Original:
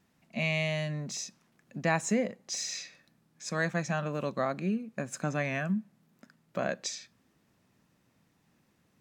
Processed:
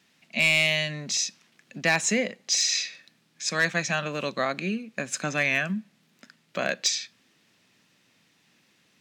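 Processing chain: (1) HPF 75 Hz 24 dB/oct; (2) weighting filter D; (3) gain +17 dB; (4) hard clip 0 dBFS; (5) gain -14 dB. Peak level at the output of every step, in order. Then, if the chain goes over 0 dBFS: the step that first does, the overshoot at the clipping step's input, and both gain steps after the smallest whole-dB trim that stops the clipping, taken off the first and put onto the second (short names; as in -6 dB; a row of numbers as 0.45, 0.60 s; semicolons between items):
-14.5, -10.0, +7.0, 0.0, -14.0 dBFS; step 3, 7.0 dB; step 3 +10 dB, step 5 -7 dB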